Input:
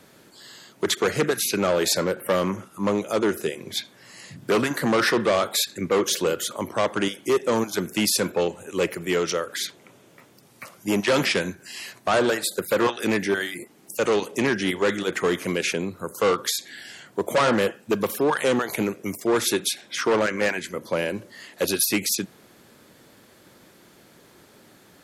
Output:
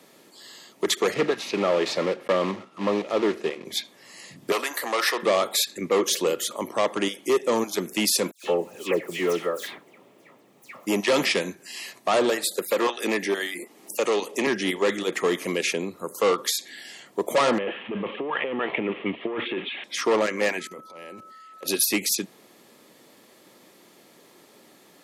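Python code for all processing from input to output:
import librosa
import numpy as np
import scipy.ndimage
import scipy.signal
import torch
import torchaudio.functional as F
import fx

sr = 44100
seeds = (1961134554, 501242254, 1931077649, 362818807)

y = fx.chain(x, sr, fx.block_float(bits=3),
    fx.lowpass(hz=3300.0, slope=12), at=(1.14, 3.65))
y = fx.chain(y, sr, fx.highpass(hz=620.0, slope=12),
    fx.peak_eq(hz=14000.0, db=7.5, octaves=0.59), at=(4.52, 5.23))
y = fx.chain(y, sr, fx.median_filter(points=9),
    fx.high_shelf(hz=9400.0, db=5.0),
    fx.dispersion(late='lows', ms=128.0, hz=2700.0), at=(8.31, 10.87))
y = fx.chain(y, sr, fx.highpass(hz=260.0, slope=6),
    fx.band_squash(depth_pct=40), at=(12.54, 14.47))
y = fx.chain(y, sr, fx.crossing_spikes(level_db=-19.5),
    fx.steep_lowpass(hz=3200.0, slope=72),
    fx.over_compress(threshold_db=-26.0, ratio=-1.0), at=(17.58, 19.84))
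y = fx.level_steps(y, sr, step_db=20, at=(20.59, 21.66), fade=0.02)
y = fx.transient(y, sr, attack_db=-11, sustain_db=4, at=(20.59, 21.66), fade=0.02)
y = fx.dmg_tone(y, sr, hz=1300.0, level_db=-43.0, at=(20.59, 21.66), fade=0.02)
y = scipy.signal.sosfilt(scipy.signal.butter(2, 220.0, 'highpass', fs=sr, output='sos'), y)
y = fx.notch(y, sr, hz=1500.0, q=5.3)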